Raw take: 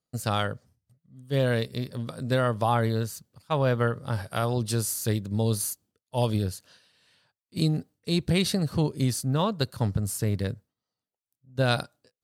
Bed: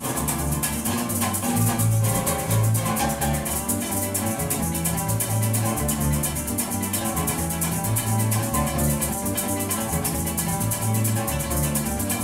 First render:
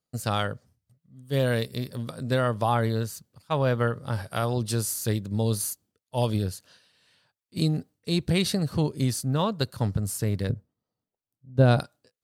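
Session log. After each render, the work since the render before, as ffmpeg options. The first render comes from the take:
-filter_complex "[0:a]asettb=1/sr,asplit=3[a][b][c];[a]atrim=end=1.264[d];[b]atrim=start=1.26:end=2.11,asetpts=PTS-STARTPTS,afade=t=in:d=0.004:c=qsin,afade=t=out:st=0.846:d=0.004:c=qsin,highshelf=f=9.9k:g=9.5[e];[c]atrim=start=2.106[f];[d][e]acrossfade=d=0.004:c1=hsin:c2=qsin[g];[g][f]acrossfade=d=0.004:c1=qsin:c2=hsin,asettb=1/sr,asplit=3[h][i][j];[h]atrim=end=10.494[k];[i]atrim=start=10.49:end=11.8,asetpts=PTS-STARTPTS,afade=t=in:d=0.004:c=qsin,afade=t=out:st=1.306:d=0.004:c=qsin,tiltshelf=f=1.1k:g=7.5[l];[j]atrim=start=11.796[m];[k][l]acrossfade=d=0.004:c1=hsin:c2=qsin[n];[n][m]acrossfade=d=0.004:c1=qsin:c2=hsin"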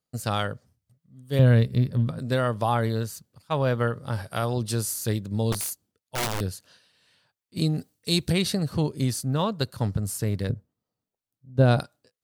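-filter_complex "[0:a]asettb=1/sr,asplit=3[a][b][c];[a]atrim=end=1.394[d];[b]atrim=start=1.39:end=2.19,asetpts=PTS-STARTPTS,afade=t=in:d=0.004:c=qsin,afade=t=out:st=0.796:d=0.004:c=qsin,bass=f=250:g=12,treble=f=4k:g=-11[e];[c]atrim=start=2.186[f];[d][e]acrossfade=d=0.004:c1=hsin:c2=qsin[g];[g][f]acrossfade=d=0.004:c1=qsin:c2=hsin,asettb=1/sr,asplit=3[h][i][j];[h]atrim=end=5.524[k];[i]atrim=start=5.52:end=6.41,asetpts=PTS-STARTPTS,afade=t=in:d=0.004:c=qsin,afade=t=out:st=0.886:d=0.004:c=qsin,aeval=exprs='(mod(12.6*val(0)+1,2)-1)/12.6':c=same[l];[j]atrim=start=6.406[m];[k][l]acrossfade=d=0.004:c1=hsin:c2=qsin[n];[n][m]acrossfade=d=0.004:c1=qsin:c2=hsin,asplit=3[o][p][q];[o]afade=t=out:st=7.77:d=0.02[r];[p]highshelf=f=3.2k:g=11.5,afade=t=in:st=7.77:d=0.02,afade=t=out:st=8.31:d=0.02[s];[q]afade=t=in:st=8.31:d=0.02[t];[r][s][t]amix=inputs=3:normalize=0"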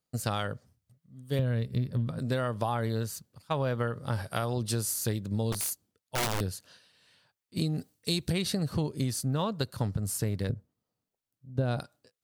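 -af "acompressor=threshold=-26dB:ratio=6"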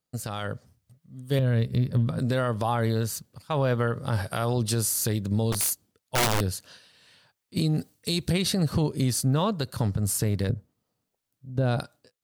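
-af "alimiter=limit=-22.5dB:level=0:latency=1:release=49,dynaudnorm=f=350:g=3:m=6.5dB"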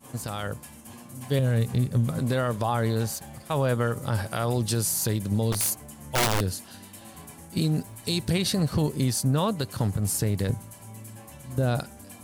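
-filter_complex "[1:a]volume=-20.5dB[a];[0:a][a]amix=inputs=2:normalize=0"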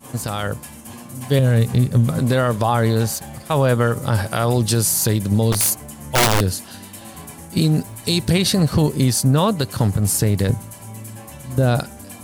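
-af "volume=8dB"

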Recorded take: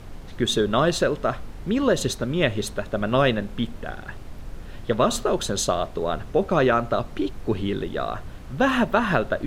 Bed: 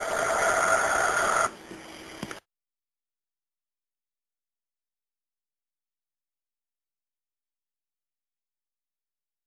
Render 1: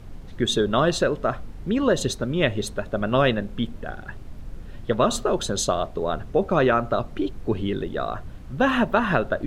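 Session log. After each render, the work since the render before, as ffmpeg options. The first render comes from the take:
-af "afftdn=nr=6:nf=-39"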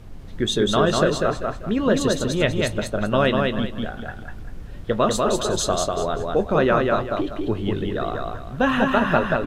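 -filter_complex "[0:a]asplit=2[a][b];[b]adelay=19,volume=-12.5dB[c];[a][c]amix=inputs=2:normalize=0,aecho=1:1:195|390|585|780:0.708|0.212|0.0637|0.0191"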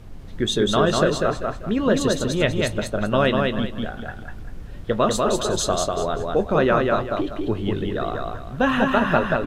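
-af anull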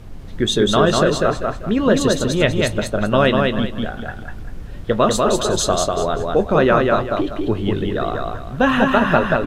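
-af "volume=4dB,alimiter=limit=-2dB:level=0:latency=1"

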